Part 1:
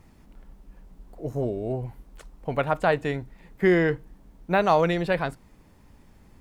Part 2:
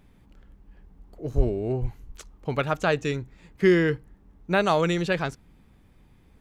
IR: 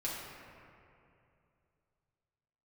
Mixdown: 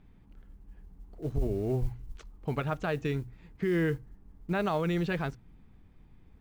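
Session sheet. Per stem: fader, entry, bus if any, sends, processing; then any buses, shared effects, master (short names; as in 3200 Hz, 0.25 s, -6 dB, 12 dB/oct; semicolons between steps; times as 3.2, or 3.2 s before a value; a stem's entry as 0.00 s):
-17.5 dB, 0.00 s, no send, level-crossing sampler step -30.5 dBFS; compressor, threshold -32 dBFS, peak gain reduction 16 dB
-5.0 dB, 0.00 s, no send, Bessel low-pass 3500 Hz, order 2; notch 560 Hz, Q 12; modulation noise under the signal 31 dB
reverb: off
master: low shelf 190 Hz +6 dB; notches 60/120 Hz; limiter -21 dBFS, peak gain reduction 12.5 dB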